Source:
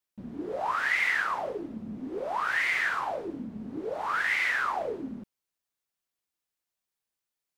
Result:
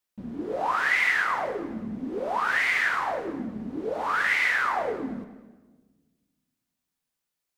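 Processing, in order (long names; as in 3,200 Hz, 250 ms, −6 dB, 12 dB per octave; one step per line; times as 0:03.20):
delay that swaps between a low-pass and a high-pass 105 ms, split 1,700 Hz, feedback 54%, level −11.5 dB
on a send at −13 dB: convolution reverb RT60 1.4 s, pre-delay 4 ms
on the sum: level +3 dB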